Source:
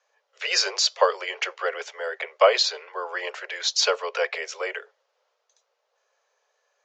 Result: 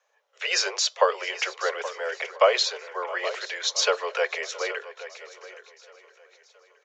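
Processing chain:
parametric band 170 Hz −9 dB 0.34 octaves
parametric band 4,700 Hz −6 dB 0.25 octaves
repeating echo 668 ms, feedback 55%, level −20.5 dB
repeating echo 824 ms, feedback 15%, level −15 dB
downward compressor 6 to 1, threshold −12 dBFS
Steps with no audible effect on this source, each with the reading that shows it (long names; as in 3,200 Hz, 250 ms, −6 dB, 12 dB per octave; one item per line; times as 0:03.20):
parametric band 170 Hz: nothing at its input below 340 Hz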